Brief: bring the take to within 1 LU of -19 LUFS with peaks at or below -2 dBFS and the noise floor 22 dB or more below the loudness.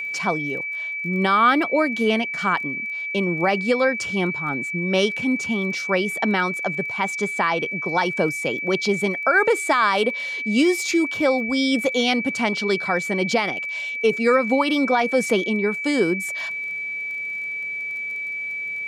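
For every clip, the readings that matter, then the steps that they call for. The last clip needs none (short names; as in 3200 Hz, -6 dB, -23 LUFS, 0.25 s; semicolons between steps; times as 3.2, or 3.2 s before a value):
ticks 21/s; steady tone 2300 Hz; tone level -26 dBFS; loudness -21.5 LUFS; peak -7.5 dBFS; loudness target -19.0 LUFS
-> de-click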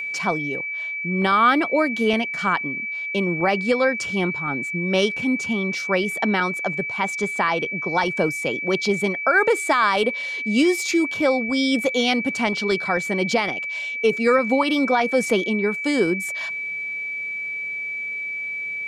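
ticks 0.11/s; steady tone 2300 Hz; tone level -26 dBFS
-> notch 2300 Hz, Q 30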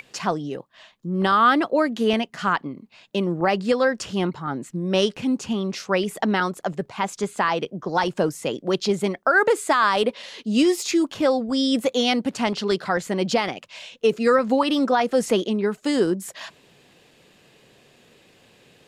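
steady tone none; loudness -22.5 LUFS; peak -8.5 dBFS; loudness target -19.0 LUFS
-> gain +3.5 dB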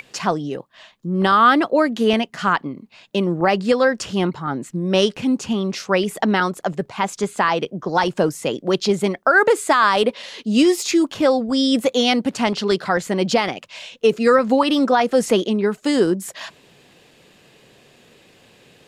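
loudness -19.0 LUFS; peak -5.0 dBFS; noise floor -54 dBFS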